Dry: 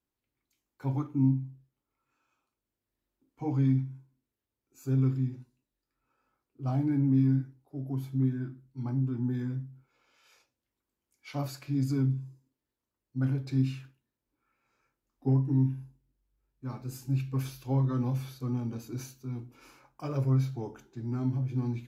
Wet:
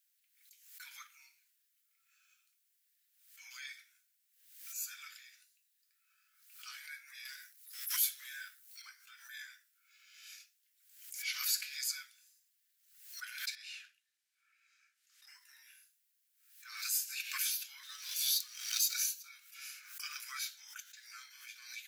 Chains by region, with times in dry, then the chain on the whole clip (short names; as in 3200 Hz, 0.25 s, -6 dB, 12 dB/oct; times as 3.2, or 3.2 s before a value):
7.25–8.82 tilt +2.5 dB/oct + sample leveller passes 1
13.55–15.27 air absorption 52 m + compressor 1.5:1, threshold -48 dBFS
17.83–18.94 resonant high shelf 2800 Hz +9 dB, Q 1.5 + compressor 2:1, threshold -37 dBFS + backlash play -54 dBFS
whole clip: steep high-pass 1500 Hz 48 dB/oct; tilt +3.5 dB/oct; backwards sustainer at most 76 dB/s; gain +4 dB